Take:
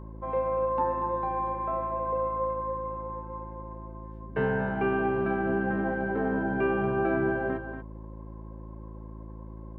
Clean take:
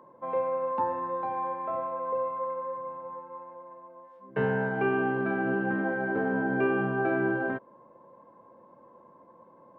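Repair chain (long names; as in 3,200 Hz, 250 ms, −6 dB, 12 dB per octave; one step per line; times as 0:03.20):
hum removal 54.2 Hz, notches 7
echo removal 235 ms −9.5 dB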